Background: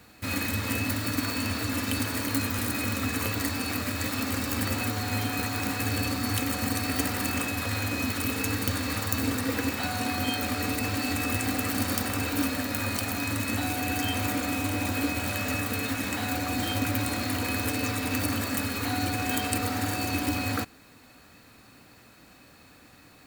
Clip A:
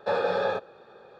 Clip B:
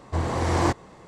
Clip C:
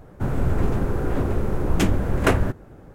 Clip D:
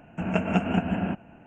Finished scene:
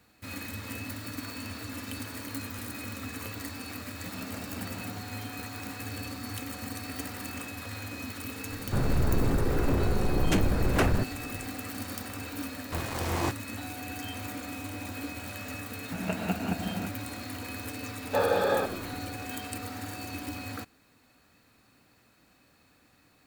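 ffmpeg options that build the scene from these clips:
ffmpeg -i bed.wav -i cue0.wav -i cue1.wav -i cue2.wav -i cue3.wav -filter_complex "[4:a]asplit=2[link_01][link_02];[0:a]volume=-9.5dB[link_03];[link_01]acompressor=threshold=-25dB:ratio=6:attack=3.2:release=140:knee=1:detection=peak[link_04];[3:a]asoftclip=type=tanh:threshold=-17.5dB[link_05];[2:a]aeval=exprs='val(0)*gte(abs(val(0)),0.0631)':channel_layout=same[link_06];[1:a]asplit=8[link_07][link_08][link_09][link_10][link_11][link_12][link_13][link_14];[link_08]adelay=102,afreqshift=-93,volume=-13.5dB[link_15];[link_09]adelay=204,afreqshift=-186,volume=-17.4dB[link_16];[link_10]adelay=306,afreqshift=-279,volume=-21.3dB[link_17];[link_11]adelay=408,afreqshift=-372,volume=-25.1dB[link_18];[link_12]adelay=510,afreqshift=-465,volume=-29dB[link_19];[link_13]adelay=612,afreqshift=-558,volume=-32.9dB[link_20];[link_14]adelay=714,afreqshift=-651,volume=-36.8dB[link_21];[link_07][link_15][link_16][link_17][link_18][link_19][link_20][link_21]amix=inputs=8:normalize=0[link_22];[link_04]atrim=end=1.46,asetpts=PTS-STARTPTS,volume=-14.5dB,afade=type=in:duration=0.004:curve=hsin,afade=type=out:start_time=1.456:duration=0.004:curve=hsin,adelay=3870[link_23];[link_05]atrim=end=2.94,asetpts=PTS-STARTPTS,volume=-1dB,afade=type=in:duration=0.004:curve=hsin,afade=type=out:start_time=2.936:duration=0.004:curve=hsin,adelay=8520[link_24];[link_06]atrim=end=1.07,asetpts=PTS-STARTPTS,volume=-7.5dB,afade=type=in:duration=0.004:curve=hsin,afade=type=out:start_time=1.066:duration=0.004:curve=hsin,adelay=12590[link_25];[link_02]atrim=end=1.46,asetpts=PTS-STARTPTS,volume=-7dB,afade=type=in:duration=0.004:curve=hsin,afade=type=out:start_time=1.456:duration=0.004:curve=hsin,adelay=15740[link_26];[link_22]atrim=end=1.19,asetpts=PTS-STARTPTS,afade=type=in:duration=0.004:curve=hsin,afade=type=out:start_time=1.186:duration=0.004:curve=hsin,adelay=18070[link_27];[link_03][link_23][link_24][link_25][link_26][link_27]amix=inputs=6:normalize=0" out.wav

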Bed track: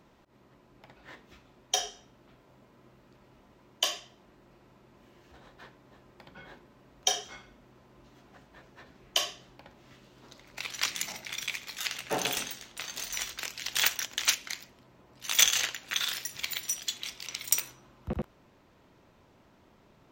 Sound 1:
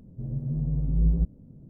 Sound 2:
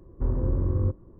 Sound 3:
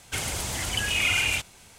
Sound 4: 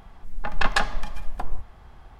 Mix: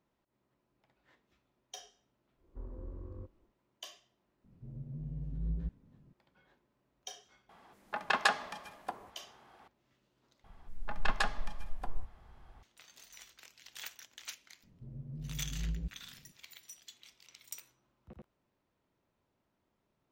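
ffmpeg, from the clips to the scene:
ffmpeg -i bed.wav -i cue0.wav -i cue1.wav -i cue2.wav -i cue3.wav -filter_complex "[1:a]asplit=2[link_01][link_02];[4:a]asplit=2[link_03][link_04];[0:a]volume=-19.5dB[link_05];[2:a]equalizer=frequency=130:width_type=o:width=0.93:gain=-13[link_06];[link_03]highpass=280[link_07];[link_05]asplit=2[link_08][link_09];[link_08]atrim=end=10.444[link_10];[link_04]atrim=end=2.19,asetpts=PTS-STARTPTS,volume=-9.5dB[link_11];[link_09]atrim=start=12.626[link_12];[link_06]atrim=end=1.19,asetpts=PTS-STARTPTS,volume=-17.5dB,afade=type=in:duration=0.1,afade=type=out:start_time=1.09:duration=0.1,adelay=2350[link_13];[link_01]atrim=end=1.69,asetpts=PTS-STARTPTS,volume=-13.5dB,afade=type=in:duration=0.004:curve=hsin,afade=type=out:start_time=1.686:duration=0.004:curve=hsin,adelay=4440[link_14];[link_07]atrim=end=2.19,asetpts=PTS-STARTPTS,volume=-4.5dB,afade=type=in:duration=0.004:curve=hsin,afade=type=out:start_time=2.186:duration=0.004:curve=hsin,adelay=7490[link_15];[link_02]atrim=end=1.69,asetpts=PTS-STARTPTS,volume=-14.5dB,afade=type=in:duration=0.004:curve=hsin,afade=type=out:start_time=1.686:duration=0.004:curve=hsin,adelay=14630[link_16];[link_10][link_11]acrossfade=duration=0.004:curve1=hsin:curve2=hsin[link_17];[link_17][link_12]acrossfade=duration=0.004:curve1=hsin:curve2=hsin[link_18];[link_18][link_13][link_14][link_15][link_16]amix=inputs=5:normalize=0" out.wav

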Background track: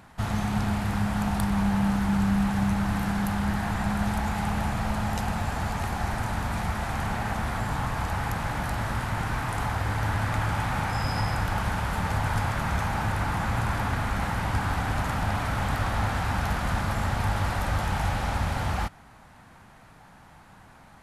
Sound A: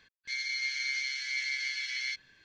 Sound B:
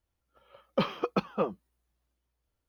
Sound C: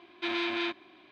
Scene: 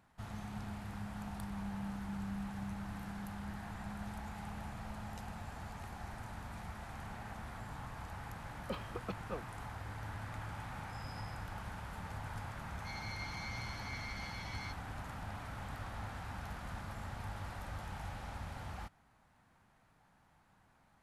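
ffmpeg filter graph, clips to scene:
ffmpeg -i bed.wav -i cue0.wav -i cue1.wav -filter_complex "[0:a]volume=-17.5dB[link_01];[2:a]atrim=end=2.68,asetpts=PTS-STARTPTS,volume=-14dB,afade=type=in:duration=0.004:curve=hsin,afade=type=out:start_time=2.676:duration=0.004:curve=hsin,adelay=7920[link_02];[1:a]atrim=end=2.44,asetpts=PTS-STARTPTS,volume=-14dB,afade=type=in:duration=0.004:curve=hsin,afade=type=out:start_time=2.436:duration=0.004:curve=hsin,adelay=12570[link_03];[link_01][link_02][link_03]amix=inputs=3:normalize=0" out.wav

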